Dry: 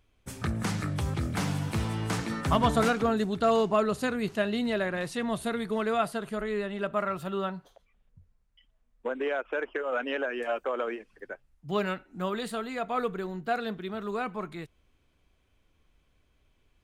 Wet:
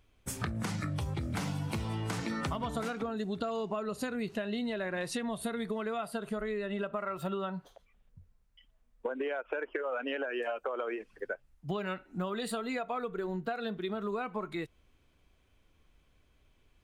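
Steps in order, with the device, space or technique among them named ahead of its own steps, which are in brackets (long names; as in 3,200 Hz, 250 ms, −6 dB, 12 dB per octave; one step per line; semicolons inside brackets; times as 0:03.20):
noise reduction from a noise print of the clip's start 7 dB
serial compression, peaks first (downward compressor, threshold −34 dBFS, peak gain reduction 14 dB; downward compressor 3 to 1, threshold −41 dBFS, peak gain reduction 7.5 dB)
level +8 dB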